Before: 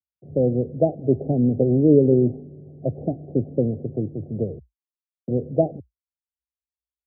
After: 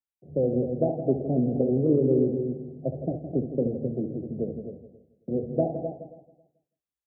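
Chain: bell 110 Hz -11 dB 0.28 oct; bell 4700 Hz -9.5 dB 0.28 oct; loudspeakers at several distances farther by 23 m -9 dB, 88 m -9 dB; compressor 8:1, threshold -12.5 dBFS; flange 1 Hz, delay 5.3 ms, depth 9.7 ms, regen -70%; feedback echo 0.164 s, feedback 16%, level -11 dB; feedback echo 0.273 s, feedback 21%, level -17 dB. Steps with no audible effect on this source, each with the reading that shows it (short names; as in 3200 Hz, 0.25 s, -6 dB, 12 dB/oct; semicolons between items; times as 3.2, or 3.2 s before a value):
bell 4700 Hz: input band ends at 760 Hz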